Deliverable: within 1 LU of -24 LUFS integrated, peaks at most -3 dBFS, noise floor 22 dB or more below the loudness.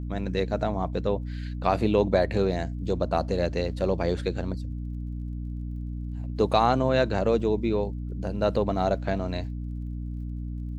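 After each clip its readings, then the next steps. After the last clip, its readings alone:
ticks 31/s; hum 60 Hz; harmonics up to 300 Hz; hum level -30 dBFS; loudness -27.5 LUFS; peak -7.5 dBFS; loudness target -24.0 LUFS
-> de-click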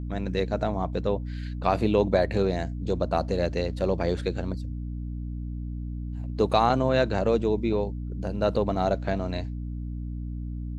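ticks 0.093/s; hum 60 Hz; harmonics up to 300 Hz; hum level -30 dBFS
-> notches 60/120/180/240/300 Hz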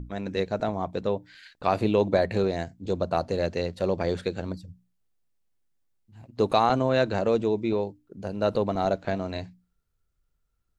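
hum none; loudness -27.0 LUFS; peak -9.0 dBFS; loudness target -24.0 LUFS
-> gain +3 dB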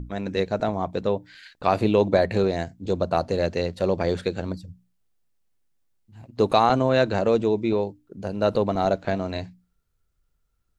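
loudness -24.0 LUFS; peak -6.0 dBFS; noise floor -72 dBFS

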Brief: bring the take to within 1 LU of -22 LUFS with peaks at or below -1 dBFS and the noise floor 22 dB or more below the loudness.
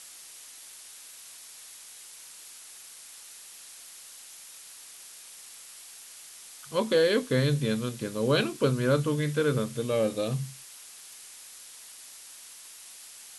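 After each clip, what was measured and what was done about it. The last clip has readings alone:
noise floor -48 dBFS; noise floor target -49 dBFS; loudness -27.0 LUFS; peak -12.5 dBFS; loudness target -22.0 LUFS
-> noise print and reduce 6 dB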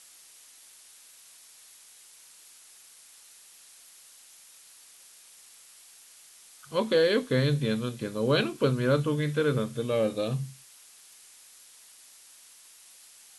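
noise floor -54 dBFS; loudness -27.5 LUFS; peak -12.5 dBFS; loudness target -22.0 LUFS
-> gain +5.5 dB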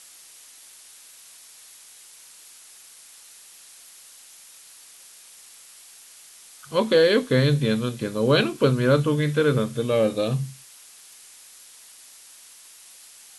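loudness -22.0 LUFS; peak -7.0 dBFS; noise floor -48 dBFS

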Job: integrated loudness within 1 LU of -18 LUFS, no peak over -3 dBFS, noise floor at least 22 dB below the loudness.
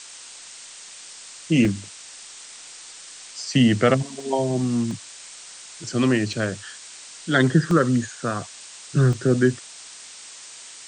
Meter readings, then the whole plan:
dropouts 7; longest dropout 1.2 ms; noise floor -42 dBFS; noise floor target -44 dBFS; loudness -22.0 LUFS; peak -5.5 dBFS; loudness target -18.0 LUFS
-> interpolate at 1.65/3.55/4.2/4.91/6.33/7.71/9.13, 1.2 ms; noise print and reduce 6 dB; gain +4 dB; limiter -3 dBFS

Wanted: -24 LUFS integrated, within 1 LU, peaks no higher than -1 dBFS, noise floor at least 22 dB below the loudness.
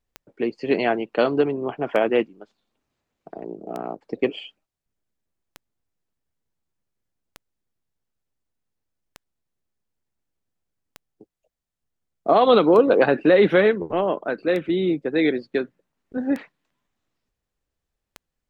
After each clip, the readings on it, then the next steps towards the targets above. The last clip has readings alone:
clicks 11; loudness -20.5 LUFS; peak -4.5 dBFS; loudness target -24.0 LUFS
-> de-click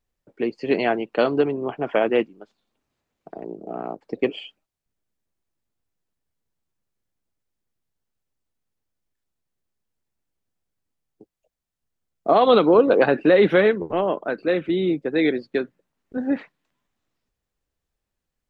clicks 0; loudness -20.5 LUFS; peak -4.5 dBFS; loudness target -24.0 LUFS
-> gain -3.5 dB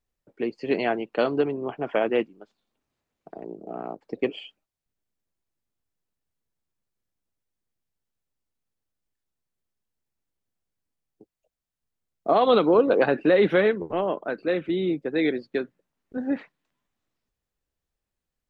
loudness -24.0 LUFS; peak -8.0 dBFS; noise floor -87 dBFS

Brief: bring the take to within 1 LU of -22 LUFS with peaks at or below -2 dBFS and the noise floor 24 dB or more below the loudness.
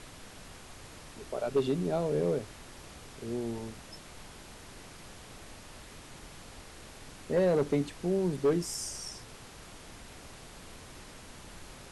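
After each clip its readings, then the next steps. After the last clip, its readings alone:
clipped 0.3%; flat tops at -20.5 dBFS; noise floor -50 dBFS; noise floor target -56 dBFS; loudness -31.5 LUFS; peak -20.5 dBFS; loudness target -22.0 LUFS
-> clip repair -20.5 dBFS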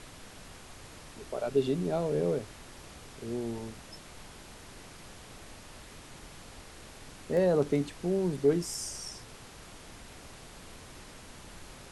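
clipped 0.0%; noise floor -50 dBFS; noise floor target -55 dBFS
-> noise print and reduce 6 dB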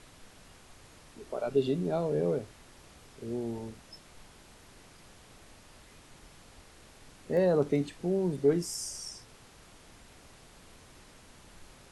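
noise floor -56 dBFS; loudness -31.0 LUFS; peak -14.0 dBFS; loudness target -22.0 LUFS
-> gain +9 dB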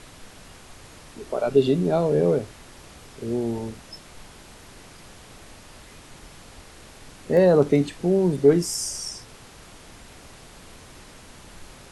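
loudness -22.0 LUFS; peak -5.0 dBFS; noise floor -47 dBFS

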